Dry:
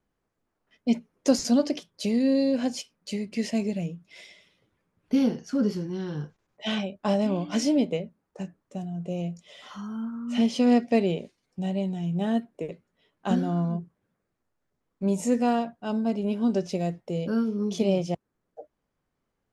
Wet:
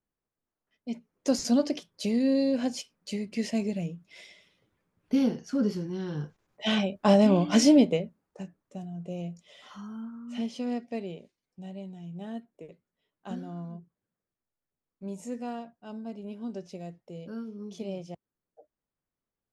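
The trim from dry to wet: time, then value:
0.90 s -11.5 dB
1.44 s -2 dB
5.98 s -2 dB
7.21 s +5 dB
7.71 s +5 dB
8.45 s -5 dB
9.85 s -5 dB
10.80 s -12.5 dB

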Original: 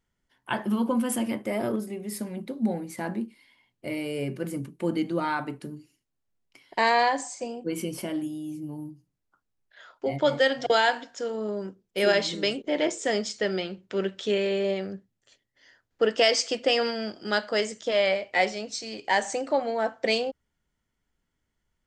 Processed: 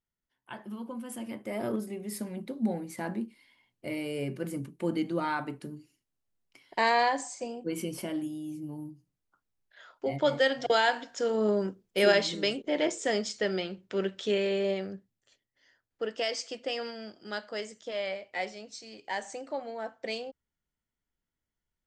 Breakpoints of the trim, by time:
1.02 s -14 dB
1.74 s -3 dB
10.86 s -3 dB
11.48 s +5 dB
12.32 s -2.5 dB
14.71 s -2.5 dB
16.03 s -10.5 dB

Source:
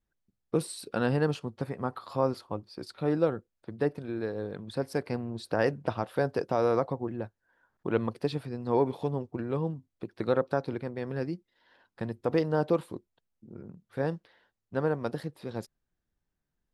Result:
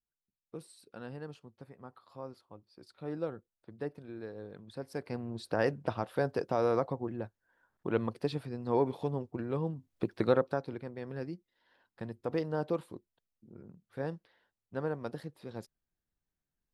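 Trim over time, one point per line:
2.59 s -17 dB
3.20 s -10 dB
4.82 s -10 dB
5.31 s -3 dB
9.73 s -3 dB
10.04 s +6 dB
10.65 s -6.5 dB

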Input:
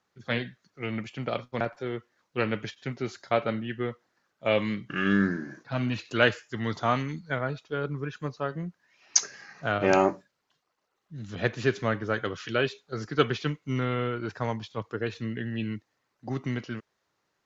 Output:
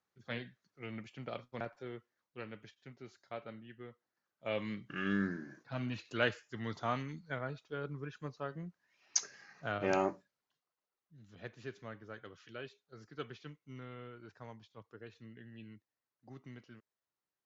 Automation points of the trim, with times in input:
1.89 s -12 dB
2.47 s -19 dB
3.89 s -19 dB
4.75 s -10 dB
10.09 s -10 dB
11.28 s -20 dB

